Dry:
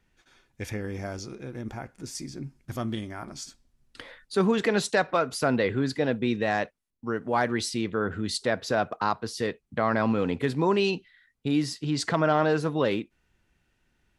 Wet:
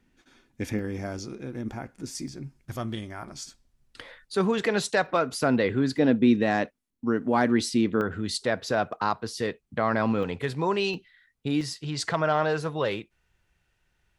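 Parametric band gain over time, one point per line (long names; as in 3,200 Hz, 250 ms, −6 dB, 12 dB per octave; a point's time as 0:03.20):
parametric band 260 Hz 0.81 octaves
+11.5 dB
from 0:00.79 +4.5 dB
from 0:02.28 −3.5 dB
from 0:05.06 +3 dB
from 0:05.98 +9.5 dB
from 0:08.01 −0.5 dB
from 0:10.23 −9 dB
from 0:10.94 −2 dB
from 0:11.61 −10.5 dB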